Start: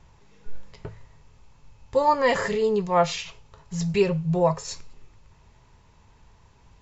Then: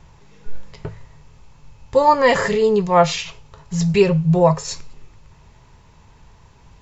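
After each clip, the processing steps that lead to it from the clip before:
parametric band 150 Hz +4 dB 0.26 octaves
level +6.5 dB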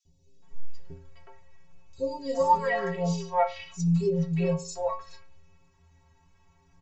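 stiff-string resonator 81 Hz, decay 0.65 s, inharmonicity 0.03
three-band delay without the direct sound highs, lows, mids 50/420 ms, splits 500/3,800 Hz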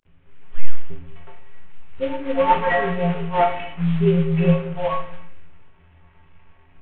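variable-slope delta modulation 16 kbit/s
on a send at −4 dB: convolution reverb RT60 0.65 s, pre-delay 17 ms
on the sum: level +6 dB

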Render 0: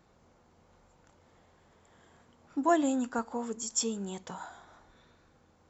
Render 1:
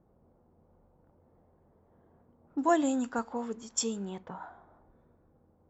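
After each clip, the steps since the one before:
low-pass that shuts in the quiet parts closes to 620 Hz, open at −27 dBFS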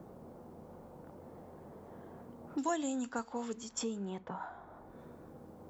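multiband upward and downward compressor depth 70%
level −2.5 dB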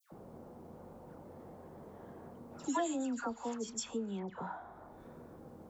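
all-pass dispersion lows, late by 118 ms, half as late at 1,600 Hz

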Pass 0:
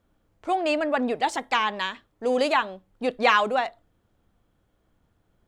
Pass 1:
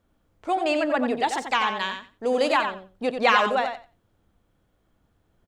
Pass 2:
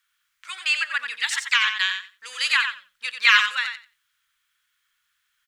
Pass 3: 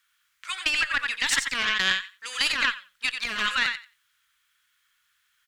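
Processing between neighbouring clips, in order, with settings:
repeating echo 90 ms, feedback 15%, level −7 dB
inverse Chebyshev high-pass filter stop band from 760 Hz, stop band 40 dB; level +8.5 dB
tube saturation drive 10 dB, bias 0.8; compressor whose output falls as the input rises −29 dBFS, ratio −1; level +4.5 dB

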